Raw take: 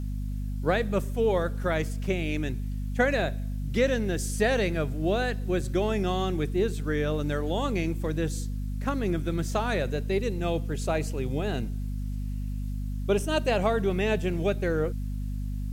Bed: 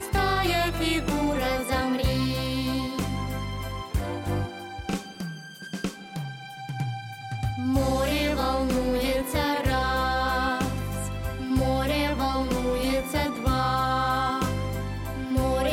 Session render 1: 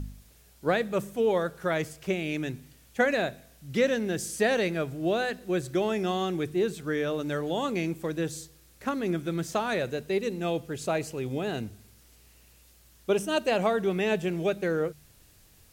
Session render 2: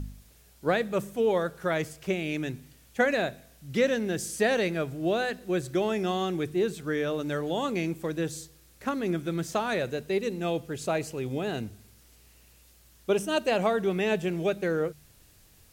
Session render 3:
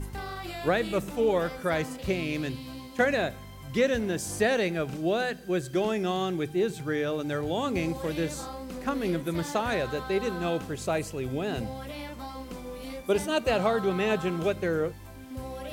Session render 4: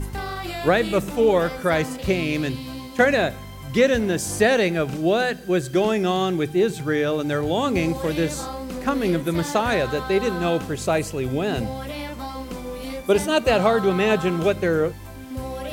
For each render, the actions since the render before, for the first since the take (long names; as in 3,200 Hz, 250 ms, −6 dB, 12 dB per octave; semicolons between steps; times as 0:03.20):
hum removal 50 Hz, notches 5
no processing that can be heard
mix in bed −13.5 dB
level +7 dB